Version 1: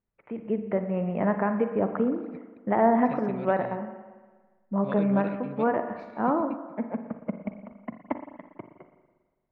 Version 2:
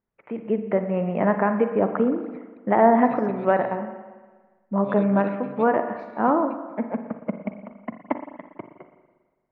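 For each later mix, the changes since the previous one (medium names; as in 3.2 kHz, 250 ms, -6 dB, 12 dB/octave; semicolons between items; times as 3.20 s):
first voice +5.5 dB; master: add bass shelf 120 Hz -9.5 dB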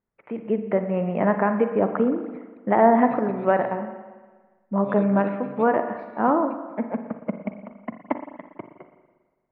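second voice: add distance through air 170 m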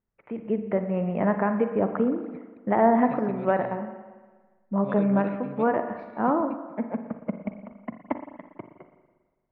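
first voice -4.0 dB; master: add bass shelf 120 Hz +9.5 dB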